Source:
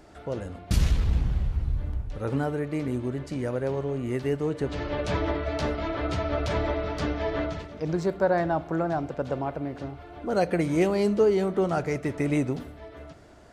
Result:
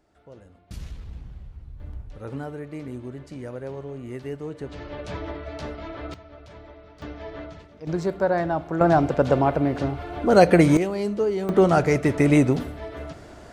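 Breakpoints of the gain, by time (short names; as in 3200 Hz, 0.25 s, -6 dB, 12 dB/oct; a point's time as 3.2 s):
-14.5 dB
from 1.8 s -6 dB
from 6.14 s -18 dB
from 7.02 s -8.5 dB
from 7.87 s +1 dB
from 8.81 s +10 dB
from 10.77 s -2.5 dB
from 11.49 s +8 dB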